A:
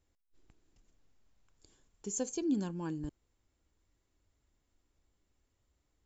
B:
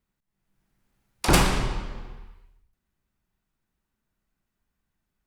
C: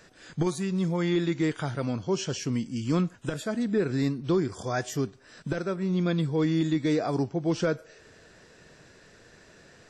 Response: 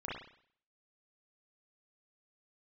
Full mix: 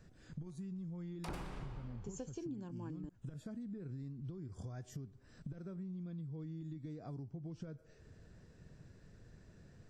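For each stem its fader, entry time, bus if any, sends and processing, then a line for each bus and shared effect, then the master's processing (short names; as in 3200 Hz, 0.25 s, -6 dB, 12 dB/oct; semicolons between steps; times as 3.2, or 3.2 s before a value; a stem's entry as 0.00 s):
+2.0 dB, 0.00 s, no send, dry
-8.0 dB, 0.00 s, no send, dry
-13.5 dB, 0.00 s, no send, low shelf 200 Hz +7.5 dB; compressor, threshold -30 dBFS, peak gain reduction 12 dB; tone controls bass +11 dB, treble +8 dB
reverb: off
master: high shelf 2600 Hz -11 dB; compressor 5:1, threshold -43 dBFS, peak gain reduction 18.5 dB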